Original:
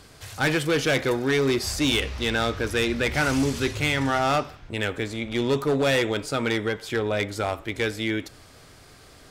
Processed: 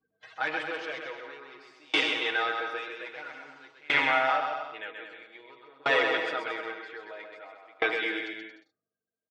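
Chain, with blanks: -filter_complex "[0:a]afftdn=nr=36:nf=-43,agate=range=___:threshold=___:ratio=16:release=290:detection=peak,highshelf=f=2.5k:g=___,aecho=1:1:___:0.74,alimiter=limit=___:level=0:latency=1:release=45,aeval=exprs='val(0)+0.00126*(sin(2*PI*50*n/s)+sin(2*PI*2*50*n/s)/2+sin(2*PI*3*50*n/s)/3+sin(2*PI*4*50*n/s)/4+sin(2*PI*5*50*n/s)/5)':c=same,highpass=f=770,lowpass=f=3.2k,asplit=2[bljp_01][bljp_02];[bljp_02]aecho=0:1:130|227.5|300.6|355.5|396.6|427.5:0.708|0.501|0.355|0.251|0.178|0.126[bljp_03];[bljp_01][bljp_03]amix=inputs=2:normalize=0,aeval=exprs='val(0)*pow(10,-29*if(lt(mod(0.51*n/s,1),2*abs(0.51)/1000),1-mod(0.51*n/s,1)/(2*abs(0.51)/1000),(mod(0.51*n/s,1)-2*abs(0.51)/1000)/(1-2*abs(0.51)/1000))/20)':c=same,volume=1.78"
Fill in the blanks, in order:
0.251, 0.00447, -6.5, 6.3, 0.168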